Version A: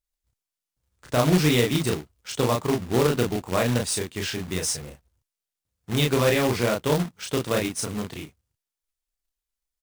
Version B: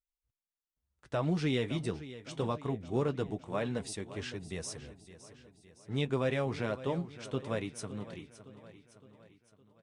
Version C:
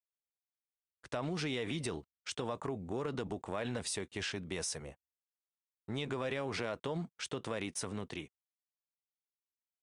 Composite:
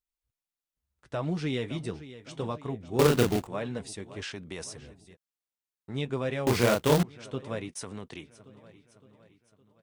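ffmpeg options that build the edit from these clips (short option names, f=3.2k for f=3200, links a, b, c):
-filter_complex "[0:a]asplit=2[a][b];[2:a]asplit=3[c][d][e];[1:a]asplit=6[f][g][h][i][j][k];[f]atrim=end=2.992[l];[a]atrim=start=2.988:end=3.472[m];[g]atrim=start=3.468:end=4.222[n];[c]atrim=start=4.218:end=4.642[o];[h]atrim=start=4.638:end=5.17[p];[d]atrim=start=5.13:end=5.96[q];[i]atrim=start=5.92:end=6.472[r];[b]atrim=start=6.468:end=7.032[s];[j]atrim=start=7.028:end=7.692[t];[e]atrim=start=7.688:end=8.242[u];[k]atrim=start=8.238[v];[l][m]acrossfade=d=0.004:c1=hsin:c2=hsin[w];[w][n]acrossfade=d=0.004:c1=hsin:c2=hsin[x];[x][o]acrossfade=d=0.004:c1=hsin:c2=hsin[y];[y][p]acrossfade=d=0.004:c1=hsin:c2=hsin[z];[z][q]acrossfade=d=0.04:c1=tri:c2=tri[aa];[aa][r]acrossfade=d=0.04:c1=tri:c2=tri[ab];[ab][s]acrossfade=d=0.004:c1=hsin:c2=hsin[ac];[ac][t]acrossfade=d=0.004:c1=hsin:c2=hsin[ad];[ad][u]acrossfade=d=0.004:c1=hsin:c2=hsin[ae];[ae][v]acrossfade=d=0.004:c1=hsin:c2=hsin"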